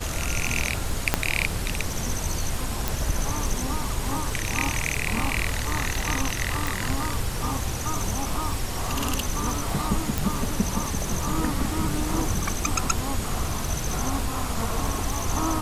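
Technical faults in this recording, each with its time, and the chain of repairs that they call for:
crackle 35 per s -30 dBFS
1.14 s: pop -3 dBFS
2.88 s: pop
6.67 s: pop
10.18 s: pop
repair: de-click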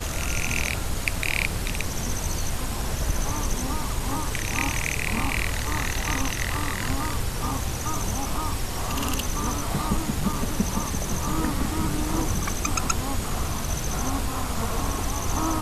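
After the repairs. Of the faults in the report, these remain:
1.14 s: pop
10.18 s: pop

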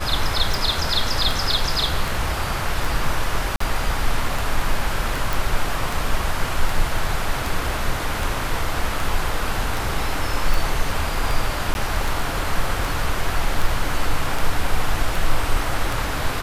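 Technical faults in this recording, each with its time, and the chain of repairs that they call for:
tick 78 rpm
3.56–3.60 s: dropout 44 ms
5.33 s: pop
11.74–11.75 s: dropout 11 ms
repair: de-click; interpolate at 3.56 s, 44 ms; interpolate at 11.74 s, 11 ms

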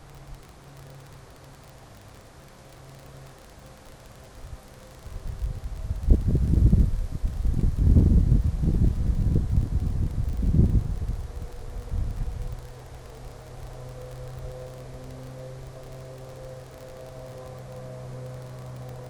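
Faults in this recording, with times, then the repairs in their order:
crackle 33 per s -34 dBFS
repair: de-click

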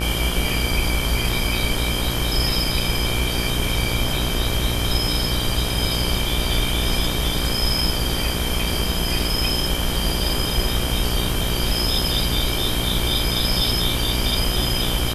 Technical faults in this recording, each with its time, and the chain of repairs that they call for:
buzz 60 Hz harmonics 31 -26 dBFS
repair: de-hum 60 Hz, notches 31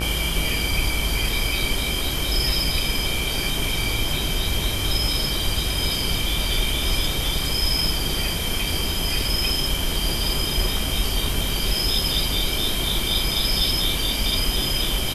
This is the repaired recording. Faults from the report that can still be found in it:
nothing left

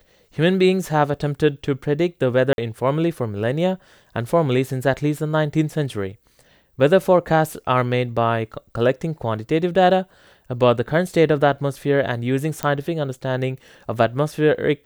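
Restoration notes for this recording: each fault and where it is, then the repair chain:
2.53–2.58 s: dropout 51 ms
12.63 s: pop -8 dBFS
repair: de-click; interpolate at 2.53 s, 51 ms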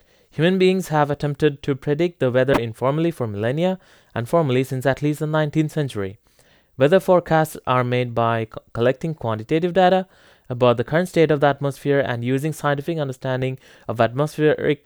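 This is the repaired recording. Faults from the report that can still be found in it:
nothing left

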